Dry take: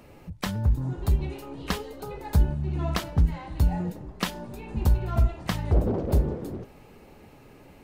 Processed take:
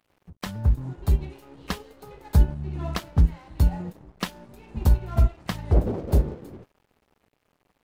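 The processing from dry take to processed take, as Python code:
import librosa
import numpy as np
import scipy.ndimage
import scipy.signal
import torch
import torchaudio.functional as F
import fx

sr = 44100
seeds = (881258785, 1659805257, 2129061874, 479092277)

y = np.sign(x) * np.maximum(np.abs(x) - 10.0 ** (-47.0 / 20.0), 0.0)
y = fx.upward_expand(y, sr, threshold_db=-34.0, expansion=1.5)
y = F.gain(torch.from_numpy(y), 4.0).numpy()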